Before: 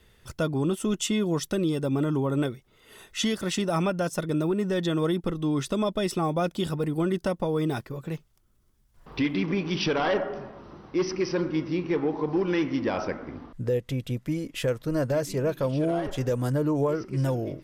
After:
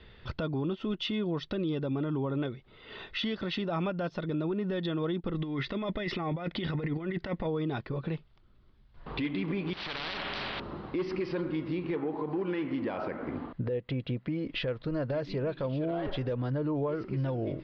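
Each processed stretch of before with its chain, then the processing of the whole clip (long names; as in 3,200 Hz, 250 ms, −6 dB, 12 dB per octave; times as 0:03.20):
0:05.34–0:07.47: parametric band 2,000 Hz +14 dB 0.4 octaves + compressor whose output falls as the input rises −30 dBFS, ratio −0.5
0:09.73–0:10.60: downward compressor, threshold −30 dBFS + every bin compressed towards the loudest bin 10 to 1
0:11.95–0:14.47: high-pass filter 120 Hz 6 dB per octave + high-shelf EQ 5,000 Hz −10 dB + notch filter 3,600 Hz, Q 24
whole clip: Butterworth low-pass 4,400 Hz 48 dB per octave; downward compressor 5 to 1, threshold −34 dBFS; brickwall limiter −29.5 dBFS; level +5.5 dB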